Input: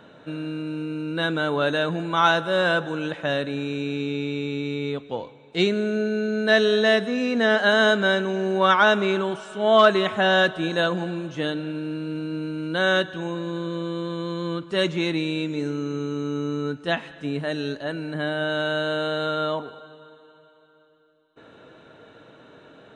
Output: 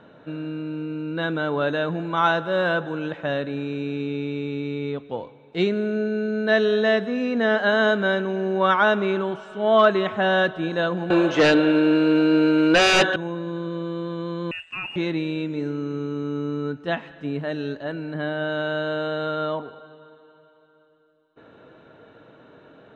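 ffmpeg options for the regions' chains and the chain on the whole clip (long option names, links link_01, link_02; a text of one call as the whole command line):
ffmpeg -i in.wav -filter_complex "[0:a]asettb=1/sr,asplit=3[link_01][link_02][link_03];[link_01]atrim=end=11.104[link_04];[link_02]atrim=start=11.1:end=13.16,asetpts=PTS-STARTPTS,afade=type=in:duration=0.004:curve=qsin,afade=type=out:start_time=2.056:duration=0.004:curve=qsin,highpass=380,aeval=exprs='0.335*sin(PI/2*5.01*val(0)/0.335)':channel_layout=same[link_05];[link_03]atrim=start=13.156[link_06];[link_04][link_05]acrossfade=duration=0.004:curve1=hsin:curve2=qsin[link_07];[link_07][link_06]acrossfade=duration=0.004:curve1=qsin:curve2=hsin,asettb=1/sr,asplit=3[link_08][link_09][link_10];[link_08]atrim=end=14.514[link_11];[link_09]atrim=start=14.51:end=14.96,asetpts=PTS-STARTPTS,afade=type=in:duration=0.004:curve=qsin,afade=type=out:start_time=0.446:duration=0.004:curve=qsin,lowpass=frequency=2600:width_type=q:width=0.5098,lowpass=frequency=2600:width_type=q:width=0.6013,lowpass=frequency=2600:width_type=q:width=0.9,lowpass=frequency=2600:width_type=q:width=2.563,afreqshift=-3000,aeval=exprs='sgn(val(0))*max(abs(val(0))-0.00447,0)':channel_layout=same,acompressor=threshold=-25dB:ratio=3:attack=3.2:release=140:knee=1:detection=peak[link_12];[link_10]atrim=start=14.956[link_13];[link_11][link_12]acrossfade=duration=0.004:curve1=hsin:curve2=qsin[link_14];[link_14][link_13]acrossfade=duration=0.004:curve1=qsin:curve2=hsin,lowpass=8100,aemphasis=mode=reproduction:type=75kf" out.wav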